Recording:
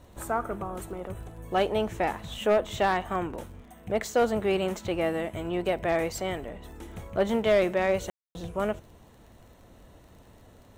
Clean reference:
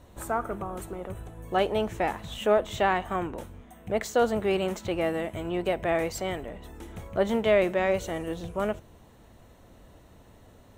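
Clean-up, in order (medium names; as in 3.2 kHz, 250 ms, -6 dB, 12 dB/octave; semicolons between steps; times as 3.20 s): clip repair -16 dBFS; de-click; room tone fill 8.10–8.35 s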